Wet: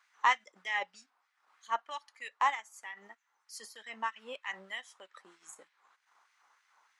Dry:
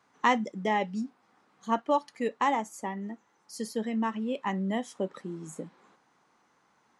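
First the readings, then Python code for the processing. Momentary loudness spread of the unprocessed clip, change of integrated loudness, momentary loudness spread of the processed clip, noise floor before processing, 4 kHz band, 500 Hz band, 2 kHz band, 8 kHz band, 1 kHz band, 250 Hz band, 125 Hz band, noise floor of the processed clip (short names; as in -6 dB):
15 LU, -4.5 dB, 23 LU, -69 dBFS, -0.5 dB, -17.0 dB, +0.5 dB, -4.0 dB, -4.0 dB, -29.5 dB, under -30 dB, -78 dBFS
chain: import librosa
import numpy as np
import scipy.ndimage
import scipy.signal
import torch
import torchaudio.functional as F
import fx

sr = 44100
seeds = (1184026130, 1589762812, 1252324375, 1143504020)

y = fx.transient(x, sr, attack_db=-5, sustain_db=-9)
y = fx.filter_lfo_highpass(y, sr, shape='sine', hz=3.2, low_hz=890.0, high_hz=2100.0, q=1.4)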